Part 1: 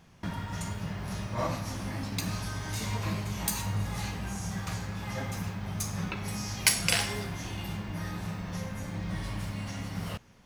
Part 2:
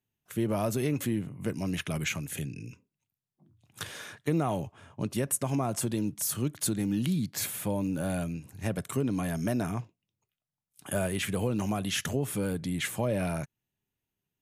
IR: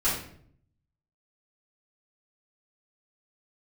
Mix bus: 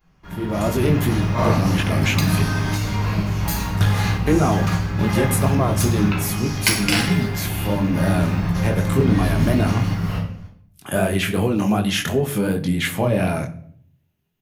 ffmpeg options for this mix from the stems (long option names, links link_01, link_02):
-filter_complex "[0:a]volume=-3.5dB,asplit=2[link_01][link_02];[link_02]volume=-10.5dB[link_03];[1:a]flanger=delay=19:depth=5.9:speed=2.7,volume=0.5dB,asplit=3[link_04][link_05][link_06];[link_05]volume=-20dB[link_07];[link_06]apad=whole_len=461139[link_08];[link_01][link_08]sidechaingate=range=-33dB:threshold=-49dB:ratio=16:detection=peak[link_09];[2:a]atrim=start_sample=2205[link_10];[link_03][link_07]amix=inputs=2:normalize=0[link_11];[link_11][link_10]afir=irnorm=-1:irlink=0[link_12];[link_09][link_04][link_12]amix=inputs=3:normalize=0,equalizer=frequency=8100:width=1.2:gain=-7.5,dynaudnorm=framelen=400:gausssize=3:maxgain=12dB"